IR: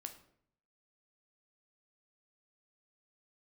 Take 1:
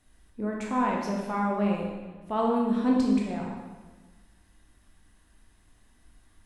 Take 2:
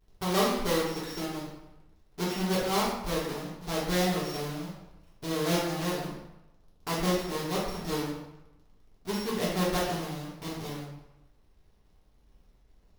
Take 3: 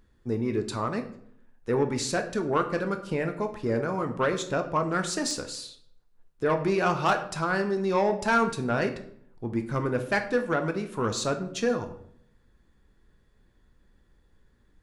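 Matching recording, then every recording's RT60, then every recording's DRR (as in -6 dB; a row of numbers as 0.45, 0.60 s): 3; 1.3, 0.95, 0.65 s; -2.0, -7.5, 6.0 dB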